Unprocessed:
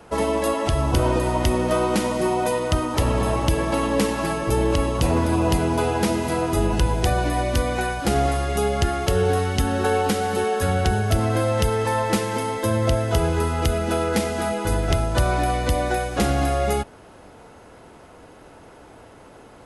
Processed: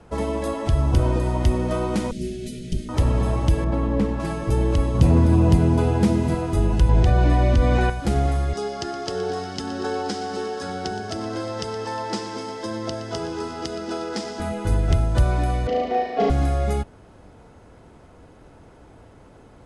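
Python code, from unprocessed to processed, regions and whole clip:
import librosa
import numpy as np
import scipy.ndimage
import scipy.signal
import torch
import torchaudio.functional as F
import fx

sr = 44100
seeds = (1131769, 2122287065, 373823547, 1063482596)

y = fx.chain(x, sr, fx.lower_of_two(delay_ms=5.0),
    fx.cheby1_bandstop(low_hz=310.0, high_hz=3300.0, order=2), at=(2.11, 2.89))
y = fx.chain(y, sr, fx.lowpass(hz=1500.0, slope=6),
    fx.low_shelf(hz=160.0, db=5.0), at=(3.64, 4.2))
y = fx.chain(y, sr, fx.highpass(hz=91.0, slope=12),
    fx.low_shelf(hz=290.0, db=9.0), at=(4.94, 6.35))
y = fx.chain(y, sr, fx.air_absorb(metres=80.0),
    fx.env_flatten(amount_pct=100), at=(6.89, 7.9))
y = fx.chain(y, sr, fx.cabinet(low_hz=310.0, low_slope=12, high_hz=8200.0, hz=(350.0, 550.0, 2300.0, 5100.0), db=(3, -5, -6, 10)),
    fx.echo_crushed(ms=119, feedback_pct=80, bits=7, wet_db=-13.5), at=(8.53, 14.4))
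y = fx.chain(y, sr, fx.cabinet(low_hz=370.0, low_slope=12, high_hz=4100.0, hz=(410.0, 700.0, 990.0, 1500.0, 2400.0, 3800.0), db=(7, 7, -6, -7, -6, -8)),
    fx.comb(ms=4.4, depth=0.94),
    fx.room_flutter(wall_m=6.2, rt60_s=1.2), at=(15.67, 16.3))
y = scipy.signal.sosfilt(scipy.signal.butter(4, 10000.0, 'lowpass', fs=sr, output='sos'), y)
y = fx.low_shelf(y, sr, hz=240.0, db=11.0)
y = fx.notch(y, sr, hz=2800.0, q=28.0)
y = y * 10.0 ** (-6.5 / 20.0)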